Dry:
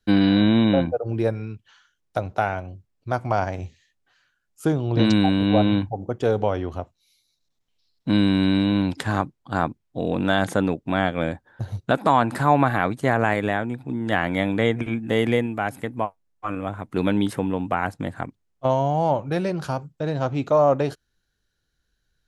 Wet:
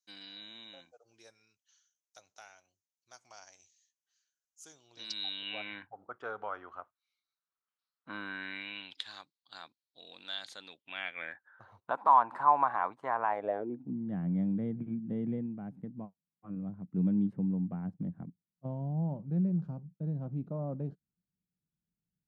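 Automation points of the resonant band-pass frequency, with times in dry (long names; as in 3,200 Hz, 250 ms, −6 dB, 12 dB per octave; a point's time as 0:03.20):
resonant band-pass, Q 5.1
0:04.94 6,300 Hz
0:06.03 1,300 Hz
0:08.20 1,300 Hz
0:09.13 4,200 Hz
0:10.61 4,200 Hz
0:11.80 990 Hz
0:13.27 990 Hz
0:13.96 180 Hz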